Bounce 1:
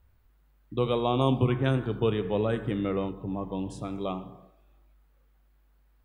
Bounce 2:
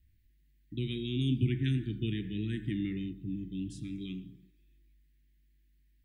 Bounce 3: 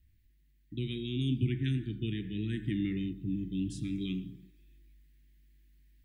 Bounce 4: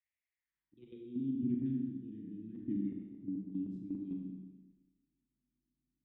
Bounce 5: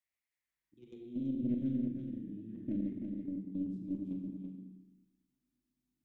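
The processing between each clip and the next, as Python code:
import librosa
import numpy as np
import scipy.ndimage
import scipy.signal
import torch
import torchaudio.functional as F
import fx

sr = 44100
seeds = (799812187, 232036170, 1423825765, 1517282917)

y1 = scipy.signal.sosfilt(scipy.signal.cheby1(4, 1.0, [340.0, 1800.0], 'bandstop', fs=sr, output='sos'), x)
y1 = y1 * 10.0 ** (-3.0 / 20.0)
y2 = fx.rider(y1, sr, range_db=10, speed_s=2.0)
y3 = fx.filter_sweep_bandpass(y2, sr, from_hz=2100.0, to_hz=260.0, start_s=0.33, end_s=1.17, q=4.3)
y3 = fx.level_steps(y3, sr, step_db=13)
y3 = fx.rev_schroeder(y3, sr, rt60_s=1.2, comb_ms=29, drr_db=1.0)
y3 = y3 * 10.0 ** (3.5 / 20.0)
y4 = fx.tracing_dist(y3, sr, depth_ms=0.16)
y4 = y4 + 10.0 ** (-6.0 / 20.0) * np.pad(y4, (int(332 * sr / 1000.0), 0))[:len(y4)]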